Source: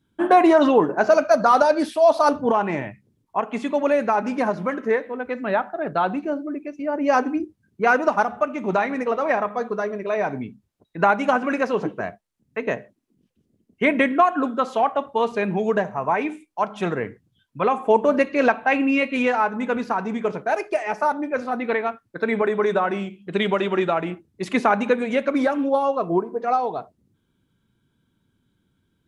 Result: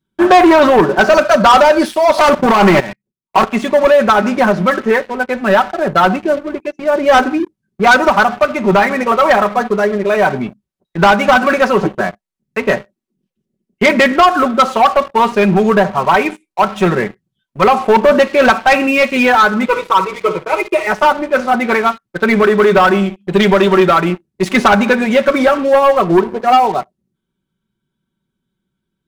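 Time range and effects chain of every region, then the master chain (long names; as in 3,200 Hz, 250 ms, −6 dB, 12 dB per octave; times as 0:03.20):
0:02.18–0:03.44: leveller curve on the samples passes 3 + low-shelf EQ 210 Hz −3 dB + output level in coarse steps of 18 dB
0:19.66–0:20.87: phaser with its sweep stopped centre 1,100 Hz, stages 8 + comb filter 6.2 ms, depth 67% + flutter between parallel walls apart 10 metres, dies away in 0.26 s
whole clip: comb filter 5.3 ms, depth 64%; dynamic equaliser 1,300 Hz, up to +5 dB, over −32 dBFS, Q 1.8; leveller curve on the samples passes 3; level −1 dB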